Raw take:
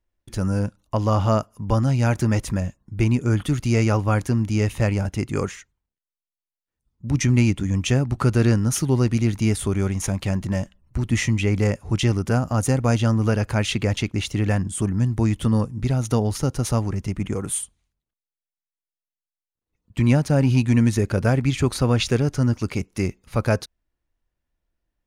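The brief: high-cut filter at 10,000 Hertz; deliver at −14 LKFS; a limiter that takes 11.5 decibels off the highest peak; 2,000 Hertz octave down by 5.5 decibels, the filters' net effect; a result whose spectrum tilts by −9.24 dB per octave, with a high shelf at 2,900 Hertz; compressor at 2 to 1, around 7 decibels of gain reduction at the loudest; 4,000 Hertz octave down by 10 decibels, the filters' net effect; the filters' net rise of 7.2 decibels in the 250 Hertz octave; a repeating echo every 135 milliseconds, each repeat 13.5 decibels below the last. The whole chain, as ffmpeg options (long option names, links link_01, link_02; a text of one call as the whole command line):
ffmpeg -i in.wav -af "lowpass=10000,equalizer=frequency=250:width_type=o:gain=8.5,equalizer=frequency=2000:width_type=o:gain=-3,highshelf=frequency=2900:gain=-5,equalizer=frequency=4000:width_type=o:gain=-8.5,acompressor=threshold=-21dB:ratio=2,alimiter=limit=-20.5dB:level=0:latency=1,aecho=1:1:135|270:0.211|0.0444,volume=15dB" out.wav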